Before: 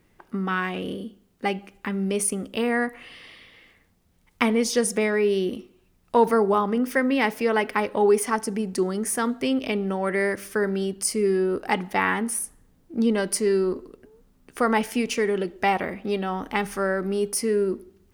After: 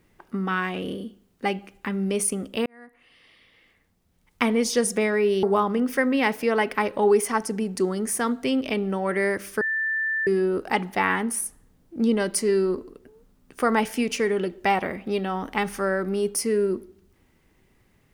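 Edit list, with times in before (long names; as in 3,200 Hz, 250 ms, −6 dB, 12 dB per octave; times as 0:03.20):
0:02.66–0:04.65: fade in
0:05.43–0:06.41: remove
0:10.59–0:11.25: beep over 1,770 Hz −22.5 dBFS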